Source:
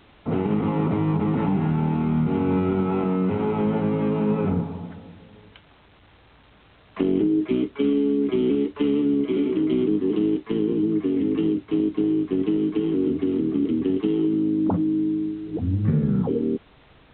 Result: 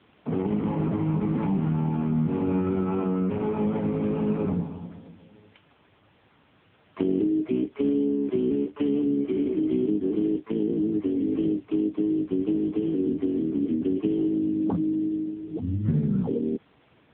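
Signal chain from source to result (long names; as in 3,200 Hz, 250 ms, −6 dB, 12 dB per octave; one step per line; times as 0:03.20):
0:08.10–0:08.71: mu-law and A-law mismatch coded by A
level −2.5 dB
AMR narrowband 6.7 kbit/s 8,000 Hz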